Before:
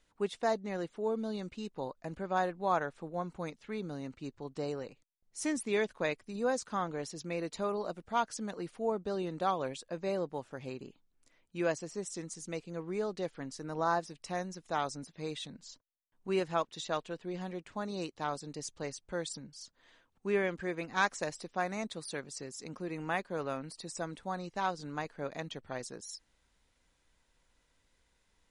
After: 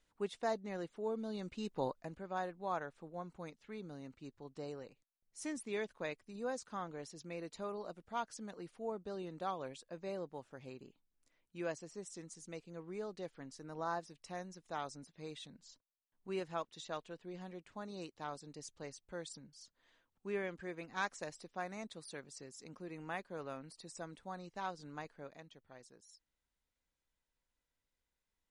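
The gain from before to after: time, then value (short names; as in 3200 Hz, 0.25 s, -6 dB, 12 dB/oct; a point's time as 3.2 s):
1.27 s -5.5 dB
1.89 s +2.5 dB
2.15 s -8.5 dB
25.09 s -8.5 dB
25.5 s -17 dB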